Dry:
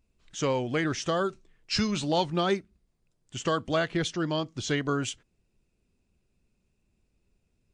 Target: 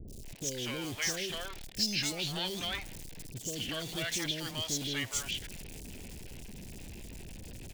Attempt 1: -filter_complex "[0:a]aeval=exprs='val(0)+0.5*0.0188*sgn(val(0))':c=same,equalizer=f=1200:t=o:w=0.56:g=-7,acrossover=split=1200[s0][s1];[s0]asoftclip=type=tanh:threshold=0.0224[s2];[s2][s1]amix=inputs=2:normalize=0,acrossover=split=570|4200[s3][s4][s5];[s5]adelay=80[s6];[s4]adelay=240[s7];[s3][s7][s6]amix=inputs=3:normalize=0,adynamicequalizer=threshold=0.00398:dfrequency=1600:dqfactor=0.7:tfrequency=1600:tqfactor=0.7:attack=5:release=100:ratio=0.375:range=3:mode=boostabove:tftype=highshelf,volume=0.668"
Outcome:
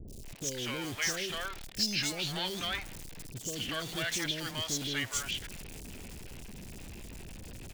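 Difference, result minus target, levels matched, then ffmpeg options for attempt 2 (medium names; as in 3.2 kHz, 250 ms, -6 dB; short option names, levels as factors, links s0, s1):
1 kHz band +2.5 dB
-filter_complex "[0:a]aeval=exprs='val(0)+0.5*0.0188*sgn(val(0))':c=same,equalizer=f=1200:t=o:w=0.56:g=-17,acrossover=split=1200[s0][s1];[s0]asoftclip=type=tanh:threshold=0.0224[s2];[s2][s1]amix=inputs=2:normalize=0,acrossover=split=570|4200[s3][s4][s5];[s5]adelay=80[s6];[s4]adelay=240[s7];[s3][s7][s6]amix=inputs=3:normalize=0,adynamicequalizer=threshold=0.00398:dfrequency=1600:dqfactor=0.7:tfrequency=1600:tqfactor=0.7:attack=5:release=100:ratio=0.375:range=3:mode=boostabove:tftype=highshelf,volume=0.668"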